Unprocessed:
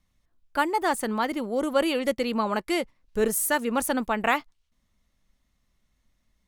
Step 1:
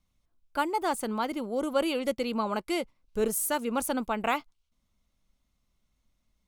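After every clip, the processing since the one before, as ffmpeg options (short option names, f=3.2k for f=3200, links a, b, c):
-af "equalizer=f=1.8k:t=o:w=0.2:g=-10.5,volume=-3.5dB"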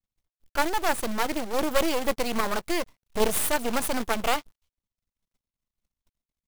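-af "agate=range=-33dB:threshold=-60dB:ratio=3:detection=peak,aeval=exprs='max(val(0),0)':c=same,acrusher=bits=2:mode=log:mix=0:aa=0.000001,volume=7.5dB"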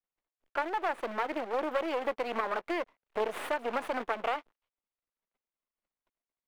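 -filter_complex "[0:a]lowpass=f=3.8k:p=1,acrossover=split=320 2900:gain=0.0891 1 0.158[a][b][c];[a][b][c]amix=inputs=3:normalize=0,acompressor=threshold=-29dB:ratio=4,volume=1dB"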